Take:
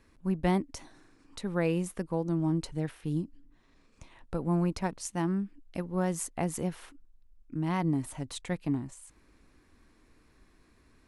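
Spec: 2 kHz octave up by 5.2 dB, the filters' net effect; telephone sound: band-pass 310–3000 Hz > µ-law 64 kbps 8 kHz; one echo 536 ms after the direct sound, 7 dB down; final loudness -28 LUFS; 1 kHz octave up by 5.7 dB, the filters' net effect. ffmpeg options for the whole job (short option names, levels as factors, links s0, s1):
-af "highpass=310,lowpass=3000,equalizer=f=1000:t=o:g=6.5,equalizer=f=2000:t=o:g=5,aecho=1:1:536:0.447,volume=2.11" -ar 8000 -c:a pcm_mulaw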